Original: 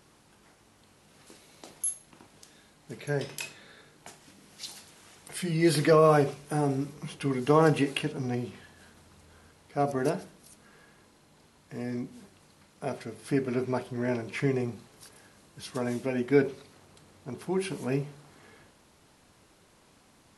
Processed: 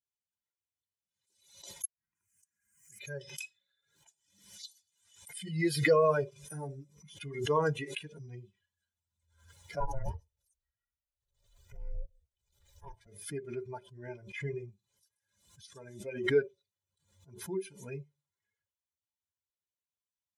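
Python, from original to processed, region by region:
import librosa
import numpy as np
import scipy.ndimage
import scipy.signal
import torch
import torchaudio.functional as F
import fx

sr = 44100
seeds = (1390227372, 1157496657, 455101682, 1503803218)

y = fx.chain(x, sr, fx.fixed_phaser(hz=1600.0, stages=4),
    fx.gate_flip(shuts_db=-29.0, range_db=-37),
    fx.band_squash(depth_pct=100), at=(1.85, 3.0))
y = fx.chain(y, sr, fx.ring_mod(carrier_hz=270.0),
    fx.low_shelf(hz=75.0, db=11.5), at=(9.8, 13.07))
y = fx.bin_expand(y, sr, power=2.0)
y = y + 0.84 * np.pad(y, (int(2.0 * sr / 1000.0), 0))[:len(y)]
y = fx.pre_swell(y, sr, db_per_s=87.0)
y = y * 10.0 ** (-6.0 / 20.0)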